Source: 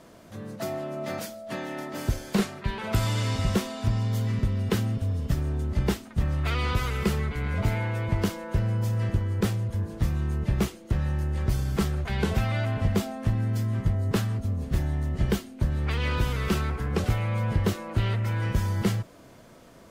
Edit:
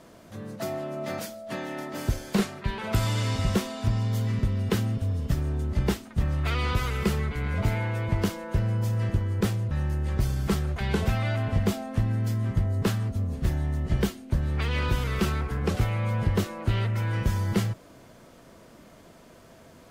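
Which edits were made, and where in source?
0:09.71–0:11.00: remove

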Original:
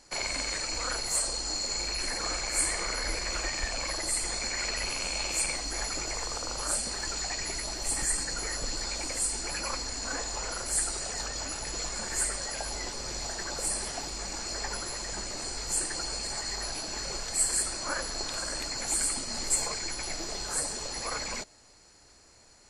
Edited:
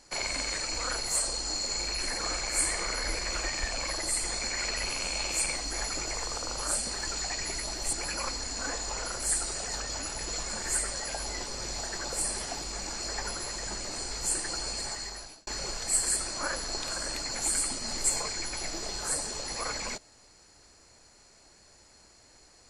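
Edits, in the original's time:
0:07.93–0:09.39: remove
0:16.28–0:16.93: fade out

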